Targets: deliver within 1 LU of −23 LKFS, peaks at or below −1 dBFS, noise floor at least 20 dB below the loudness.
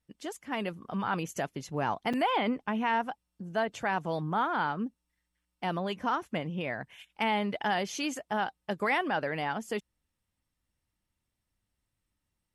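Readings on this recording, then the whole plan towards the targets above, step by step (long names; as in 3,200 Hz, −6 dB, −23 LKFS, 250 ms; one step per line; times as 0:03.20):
number of dropouts 1; longest dropout 5.7 ms; integrated loudness −32.0 LKFS; sample peak −17.0 dBFS; target loudness −23.0 LKFS
→ repair the gap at 0:02.13, 5.7 ms
level +9 dB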